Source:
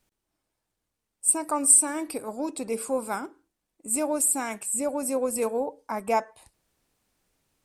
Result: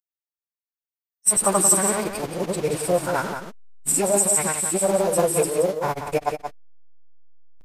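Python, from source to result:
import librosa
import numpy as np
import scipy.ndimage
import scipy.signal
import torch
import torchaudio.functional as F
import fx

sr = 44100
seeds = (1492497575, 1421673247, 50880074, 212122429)

p1 = fx.delta_hold(x, sr, step_db=-35.5)
p2 = fx.granulator(p1, sr, seeds[0], grain_ms=100.0, per_s=20.0, spray_ms=100.0, spread_st=0)
p3 = fx.pitch_keep_formants(p2, sr, semitones=-7.0)
p4 = p3 + fx.echo_single(p3, sr, ms=177, db=-7.5, dry=0)
y = F.gain(torch.from_numpy(p4), 8.0).numpy()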